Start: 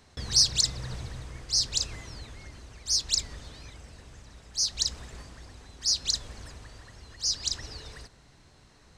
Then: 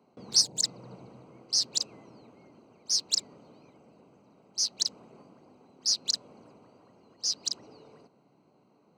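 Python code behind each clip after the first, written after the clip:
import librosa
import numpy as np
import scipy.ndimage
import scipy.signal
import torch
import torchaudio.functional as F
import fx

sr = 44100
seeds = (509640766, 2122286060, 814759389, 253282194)

y = fx.wiener(x, sr, points=25)
y = scipy.signal.sosfilt(scipy.signal.butter(4, 180.0, 'highpass', fs=sr, output='sos'), y)
y = fx.spec_box(y, sr, start_s=0.41, length_s=0.22, low_hz=970.0, high_hz=6300.0, gain_db=-12)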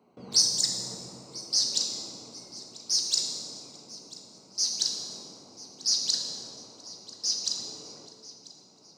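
y = fx.echo_thinned(x, sr, ms=991, feedback_pct=50, hz=420.0, wet_db=-19.0)
y = fx.rev_plate(y, sr, seeds[0], rt60_s=1.6, hf_ratio=0.9, predelay_ms=0, drr_db=1.0)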